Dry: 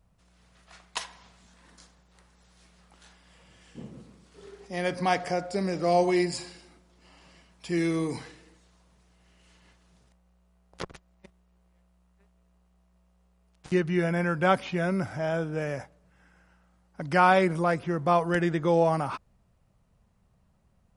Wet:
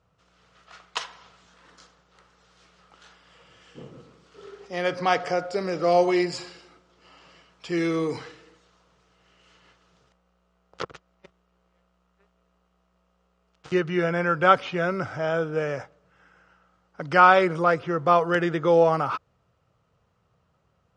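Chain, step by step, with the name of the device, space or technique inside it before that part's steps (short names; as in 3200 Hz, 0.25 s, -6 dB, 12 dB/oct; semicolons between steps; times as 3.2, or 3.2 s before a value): car door speaker (speaker cabinet 95–6900 Hz, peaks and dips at 210 Hz -10 dB, 470 Hz +6 dB, 1300 Hz +9 dB, 3000 Hz +4 dB); gain +1.5 dB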